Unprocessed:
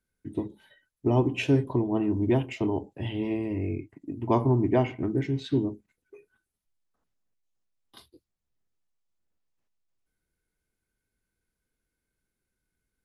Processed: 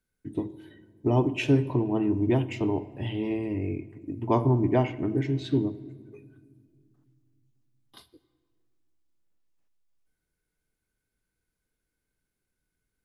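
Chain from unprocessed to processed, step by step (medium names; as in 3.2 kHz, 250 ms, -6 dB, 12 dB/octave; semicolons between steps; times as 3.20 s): simulated room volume 3300 m³, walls mixed, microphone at 0.4 m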